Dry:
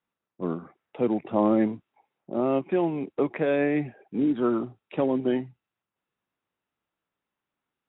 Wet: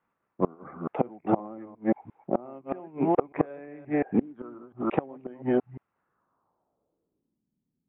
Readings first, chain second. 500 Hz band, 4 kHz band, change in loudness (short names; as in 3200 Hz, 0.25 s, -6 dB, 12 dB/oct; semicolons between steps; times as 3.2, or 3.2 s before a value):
-3.5 dB, n/a, -3.5 dB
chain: reverse delay 0.175 s, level -7 dB; resonant high shelf 1600 Hz -8 dB, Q 1.5; flipped gate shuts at -18 dBFS, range -28 dB; dynamic EQ 750 Hz, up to +6 dB, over -55 dBFS, Q 4.9; low-pass sweep 2200 Hz -> 210 Hz, 5.91–7.49; gain +7 dB